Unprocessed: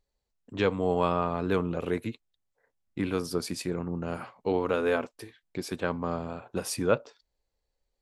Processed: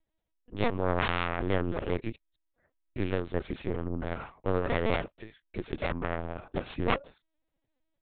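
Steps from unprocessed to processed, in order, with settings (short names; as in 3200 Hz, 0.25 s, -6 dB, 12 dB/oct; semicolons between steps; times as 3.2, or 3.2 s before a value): self-modulated delay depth 0.72 ms; LPC vocoder at 8 kHz pitch kept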